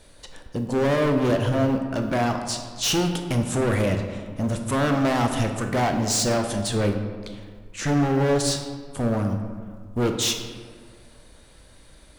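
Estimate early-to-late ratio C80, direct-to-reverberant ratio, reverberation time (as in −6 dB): 8.0 dB, 4.5 dB, 1.8 s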